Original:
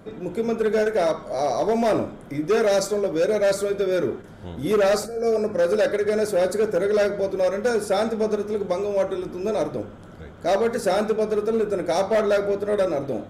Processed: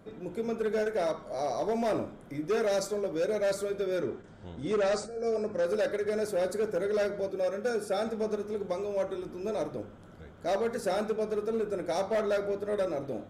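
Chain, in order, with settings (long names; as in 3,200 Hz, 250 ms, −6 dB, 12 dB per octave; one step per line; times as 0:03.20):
0:04.01–0:05.66: Butterworth low-pass 9,100 Hz 72 dB per octave
0:07.28–0:08.07: notch comb filter 1,000 Hz
level −8.5 dB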